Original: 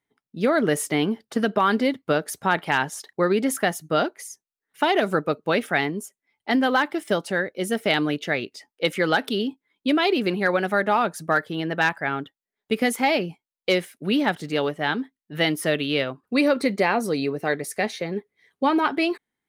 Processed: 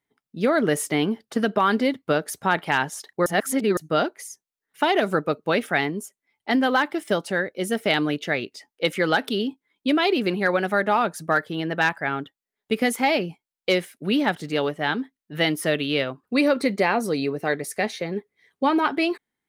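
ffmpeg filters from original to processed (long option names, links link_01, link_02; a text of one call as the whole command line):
ffmpeg -i in.wav -filter_complex "[0:a]asplit=3[link_01][link_02][link_03];[link_01]atrim=end=3.262[link_04];[link_02]atrim=start=3.258:end=3.772,asetpts=PTS-STARTPTS,areverse[link_05];[link_03]atrim=start=3.768[link_06];[link_04][link_05]acrossfade=duration=0.004:curve1=hsin:curve2=hsin[link_07];[link_07][link_06]acrossfade=duration=0.004:curve1=hsin:curve2=hsin" out.wav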